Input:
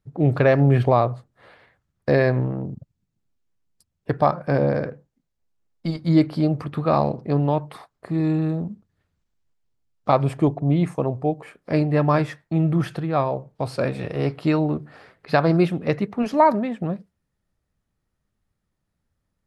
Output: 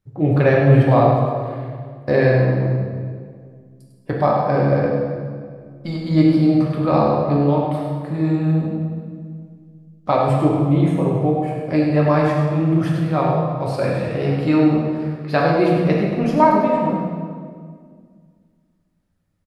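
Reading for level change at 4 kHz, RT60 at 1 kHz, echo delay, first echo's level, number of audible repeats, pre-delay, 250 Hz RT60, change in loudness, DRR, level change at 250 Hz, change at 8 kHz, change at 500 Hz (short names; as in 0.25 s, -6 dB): +3.0 dB, 1.8 s, 0.1 s, -7.5 dB, 1, 3 ms, 2.5 s, +4.0 dB, -3.5 dB, +5.0 dB, n/a, +4.0 dB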